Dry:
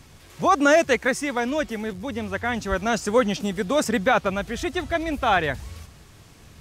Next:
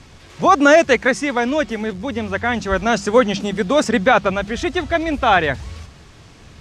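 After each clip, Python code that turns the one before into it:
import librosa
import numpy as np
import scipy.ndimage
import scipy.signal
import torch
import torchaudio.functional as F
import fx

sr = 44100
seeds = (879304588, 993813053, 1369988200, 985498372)

y = scipy.signal.sosfilt(scipy.signal.butter(2, 6400.0, 'lowpass', fs=sr, output='sos'), x)
y = fx.hum_notches(y, sr, base_hz=50, count=4)
y = F.gain(torch.from_numpy(y), 6.0).numpy()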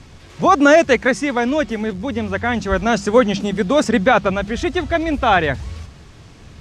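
y = fx.low_shelf(x, sr, hz=390.0, db=4.0)
y = F.gain(torch.from_numpy(y), -1.0).numpy()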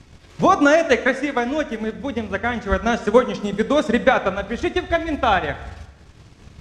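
y = fx.transient(x, sr, attack_db=7, sustain_db=-8)
y = fx.rev_plate(y, sr, seeds[0], rt60_s=1.1, hf_ratio=1.0, predelay_ms=0, drr_db=10.5)
y = F.gain(torch.from_numpy(y), -5.5).numpy()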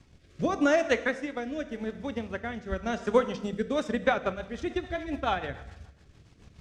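y = fx.rotary_switch(x, sr, hz=0.85, then_hz=7.0, switch_at_s=3.46)
y = F.gain(torch.from_numpy(y), -8.0).numpy()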